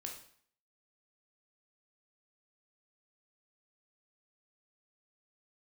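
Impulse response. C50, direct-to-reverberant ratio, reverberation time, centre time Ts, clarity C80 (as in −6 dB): 6.0 dB, 0.5 dB, 0.55 s, 26 ms, 10.0 dB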